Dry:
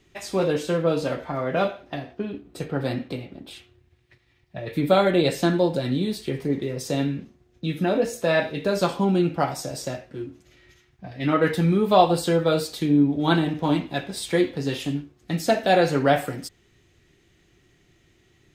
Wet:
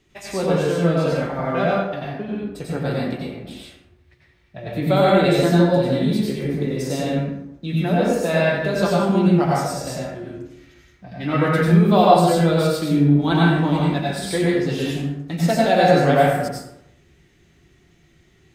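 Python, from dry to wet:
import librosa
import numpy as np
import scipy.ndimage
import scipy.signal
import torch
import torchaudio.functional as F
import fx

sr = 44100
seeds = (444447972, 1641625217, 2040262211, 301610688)

y = fx.rev_plate(x, sr, seeds[0], rt60_s=0.82, hf_ratio=0.5, predelay_ms=80, drr_db=-4.5)
y = y * librosa.db_to_amplitude(-2.0)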